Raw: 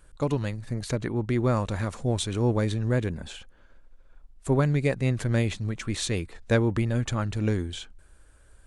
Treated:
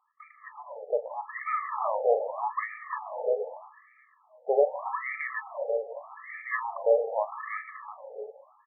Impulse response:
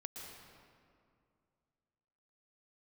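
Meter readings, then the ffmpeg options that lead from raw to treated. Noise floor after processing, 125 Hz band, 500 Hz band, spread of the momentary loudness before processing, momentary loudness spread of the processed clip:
-63 dBFS, under -40 dB, +2.0 dB, 9 LU, 18 LU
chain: -filter_complex "[0:a]dynaudnorm=f=200:g=9:m=2.99,asuperstop=centerf=1500:order=20:qfactor=4,aecho=1:1:353|706|1059|1412:0.473|0.132|0.0371|0.0104,asplit=2[s0][s1];[1:a]atrim=start_sample=2205,adelay=38[s2];[s1][s2]afir=irnorm=-1:irlink=0,volume=0.631[s3];[s0][s3]amix=inputs=2:normalize=0,afftfilt=real='re*between(b*sr/1024,580*pow(1700/580,0.5+0.5*sin(2*PI*0.82*pts/sr))/1.41,580*pow(1700/580,0.5+0.5*sin(2*PI*0.82*pts/sr))*1.41)':imag='im*between(b*sr/1024,580*pow(1700/580,0.5+0.5*sin(2*PI*0.82*pts/sr))/1.41,580*pow(1700/580,0.5+0.5*sin(2*PI*0.82*pts/sr))*1.41)':win_size=1024:overlap=0.75"

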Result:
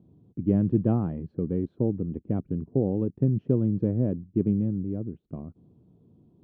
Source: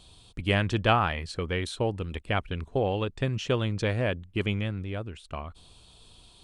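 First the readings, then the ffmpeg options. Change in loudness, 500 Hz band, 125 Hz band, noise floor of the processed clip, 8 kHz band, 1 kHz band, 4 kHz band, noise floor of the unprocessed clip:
+1.5 dB, -1.5 dB, +2.5 dB, -67 dBFS, under -30 dB, -14.5 dB, under -35 dB, -56 dBFS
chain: -af "asuperpass=centerf=210:order=4:qfactor=1,volume=2.66"

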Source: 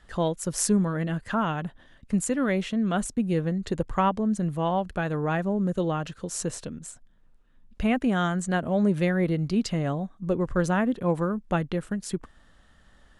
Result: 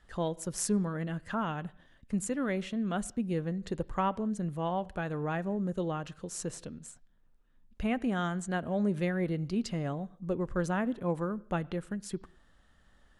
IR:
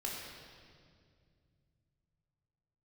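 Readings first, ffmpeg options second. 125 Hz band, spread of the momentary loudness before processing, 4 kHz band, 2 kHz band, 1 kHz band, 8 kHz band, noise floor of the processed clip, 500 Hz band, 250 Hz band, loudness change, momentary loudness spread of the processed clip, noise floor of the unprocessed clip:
-7.0 dB, 8 LU, -7.0 dB, -6.5 dB, -6.5 dB, -7.0 dB, -63 dBFS, -6.5 dB, -7.0 dB, -6.5 dB, 8 LU, -57 dBFS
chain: -filter_complex "[0:a]asplit=2[s0][s1];[s1]lowpass=f=4400:w=0.5412,lowpass=f=4400:w=1.3066[s2];[1:a]atrim=start_sample=2205,afade=t=out:st=0.25:d=0.01,atrim=end_sample=11466[s3];[s2][s3]afir=irnorm=-1:irlink=0,volume=0.1[s4];[s0][s4]amix=inputs=2:normalize=0,volume=0.447"

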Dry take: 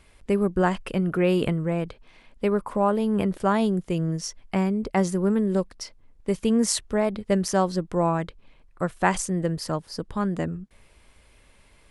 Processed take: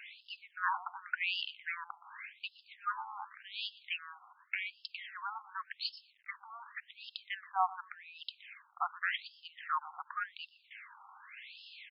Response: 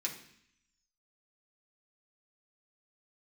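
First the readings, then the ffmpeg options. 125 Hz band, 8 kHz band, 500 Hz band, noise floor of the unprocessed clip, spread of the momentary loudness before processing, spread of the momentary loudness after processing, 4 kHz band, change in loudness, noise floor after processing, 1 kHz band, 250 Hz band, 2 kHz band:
under -40 dB, under -40 dB, -37.0 dB, -57 dBFS, 9 LU, 16 LU, -4.0 dB, -15.0 dB, -69 dBFS, -9.0 dB, under -40 dB, -3.5 dB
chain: -filter_complex "[0:a]lowshelf=f=440:g=-10.5,areverse,acompressor=threshold=0.0178:ratio=8,areverse,alimiter=level_in=2:limit=0.0631:level=0:latency=1:release=197,volume=0.501,asplit=2[s0][s1];[s1]adelay=120,lowpass=f=3400:p=1,volume=0.141,asplit=2[s2][s3];[s3]adelay=120,lowpass=f=3400:p=1,volume=0.38,asplit=2[s4][s5];[s5]adelay=120,lowpass=f=3400:p=1,volume=0.38[s6];[s2][s4][s6]amix=inputs=3:normalize=0[s7];[s0][s7]amix=inputs=2:normalize=0,acrusher=bits=11:mix=0:aa=0.000001,afftfilt=real='re*between(b*sr/1024,980*pow(3800/980,0.5+0.5*sin(2*PI*0.88*pts/sr))/1.41,980*pow(3800/980,0.5+0.5*sin(2*PI*0.88*pts/sr))*1.41)':imag='im*between(b*sr/1024,980*pow(3800/980,0.5+0.5*sin(2*PI*0.88*pts/sr))/1.41,980*pow(3800/980,0.5+0.5*sin(2*PI*0.88*pts/sr))*1.41)':win_size=1024:overlap=0.75,volume=5.31"

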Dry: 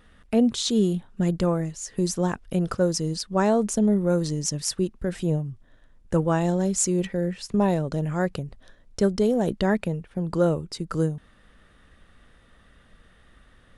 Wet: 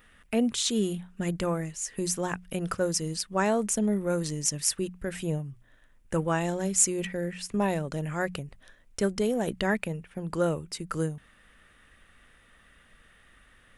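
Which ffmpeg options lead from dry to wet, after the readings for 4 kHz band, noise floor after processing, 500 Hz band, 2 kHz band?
-1.5 dB, -60 dBFS, -5.0 dB, +1.5 dB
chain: -af "highshelf=f=3200:t=q:w=1.5:g=-8,bandreject=f=60:t=h:w=6,bandreject=f=120:t=h:w=6,bandreject=f=180:t=h:w=6,crystalizer=i=6.5:c=0,volume=0.501"

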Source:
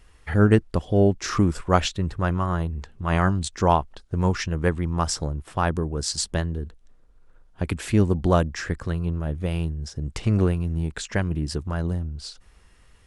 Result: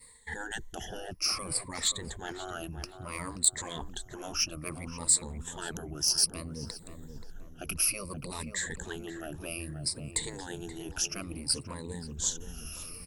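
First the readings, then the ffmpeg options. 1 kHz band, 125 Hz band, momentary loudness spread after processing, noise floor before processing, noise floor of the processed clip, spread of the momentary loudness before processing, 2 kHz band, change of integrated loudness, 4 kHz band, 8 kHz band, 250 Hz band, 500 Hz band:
-16.0 dB, -19.5 dB, 15 LU, -55 dBFS, -50 dBFS, 10 LU, -7.5 dB, -8.0 dB, +1.0 dB, +6.0 dB, -17.5 dB, -17.0 dB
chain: -filter_complex "[0:a]afftfilt=real='re*pow(10,23/40*sin(2*PI*(0.97*log(max(b,1)*sr/1024/100)/log(2)-(-0.6)*(pts-256)/sr)))':imag='im*pow(10,23/40*sin(2*PI*(0.97*log(max(b,1)*sr/1024/100)/log(2)-(-0.6)*(pts-256)/sr)))':win_size=1024:overlap=0.75,afftfilt=real='re*lt(hypot(re,im),0.501)':imag='im*lt(hypot(re,im),0.501)':win_size=1024:overlap=0.75,agate=range=0.0224:threshold=0.00316:ratio=3:detection=peak,acontrast=54,lowshelf=f=180:g=4,areverse,acompressor=threshold=0.0178:ratio=5,areverse,aemphasis=mode=production:type=cd,crystalizer=i=2.5:c=0,asplit=2[s0][s1];[s1]adelay=529,lowpass=f=1400:p=1,volume=0.398,asplit=2[s2][s3];[s3]adelay=529,lowpass=f=1400:p=1,volume=0.5,asplit=2[s4][s5];[s5]adelay=529,lowpass=f=1400:p=1,volume=0.5,asplit=2[s6][s7];[s7]adelay=529,lowpass=f=1400:p=1,volume=0.5,asplit=2[s8][s9];[s9]adelay=529,lowpass=f=1400:p=1,volume=0.5,asplit=2[s10][s11];[s11]adelay=529,lowpass=f=1400:p=1,volume=0.5[s12];[s2][s4][s6][s8][s10][s12]amix=inputs=6:normalize=0[s13];[s0][s13]amix=inputs=2:normalize=0,volume=0.596"

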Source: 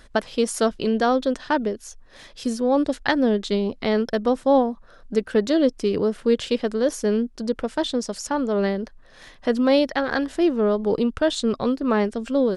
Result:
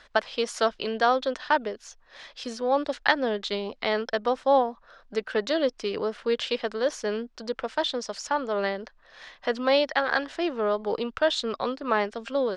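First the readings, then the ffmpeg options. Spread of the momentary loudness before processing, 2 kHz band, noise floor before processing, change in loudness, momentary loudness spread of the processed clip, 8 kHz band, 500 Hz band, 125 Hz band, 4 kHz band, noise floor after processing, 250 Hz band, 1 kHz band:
8 LU, +1.5 dB, -49 dBFS, -4.5 dB, 10 LU, -6.5 dB, -4.5 dB, under -10 dB, +0.5 dB, -58 dBFS, -11.5 dB, +0.5 dB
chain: -filter_complex "[0:a]acrossover=split=550 6100:gain=0.178 1 0.0631[s0][s1][s2];[s0][s1][s2]amix=inputs=3:normalize=0,volume=1.19"

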